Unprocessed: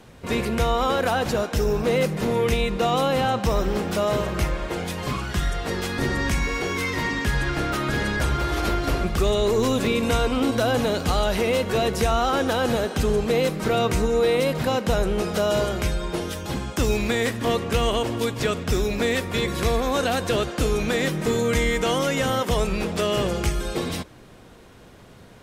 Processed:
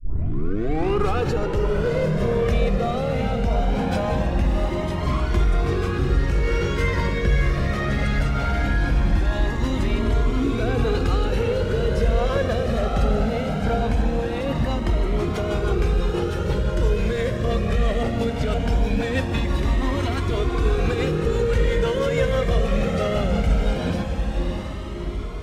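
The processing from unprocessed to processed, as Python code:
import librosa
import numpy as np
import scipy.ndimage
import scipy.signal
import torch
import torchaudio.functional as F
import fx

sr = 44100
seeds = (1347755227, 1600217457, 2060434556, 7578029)

p1 = fx.tape_start_head(x, sr, length_s=1.27)
p2 = fx.lowpass(p1, sr, hz=2400.0, slope=6)
p3 = fx.low_shelf(p2, sr, hz=240.0, db=4.5)
p4 = fx.hum_notches(p3, sr, base_hz=60, count=4)
p5 = fx.over_compress(p4, sr, threshold_db=-23.0, ratio=-0.5)
p6 = p4 + (p5 * 10.0 ** (-1.0 / 20.0))
p7 = np.clip(10.0 ** (12.0 / 20.0) * p6, -1.0, 1.0) / 10.0 ** (12.0 / 20.0)
p8 = fx.rotary_switch(p7, sr, hz=0.7, then_hz=6.0, switch_at_s=12.23)
p9 = fx.echo_diffused(p8, sr, ms=696, feedback_pct=61, wet_db=-4.5)
y = fx.comb_cascade(p9, sr, direction='rising', hz=0.2)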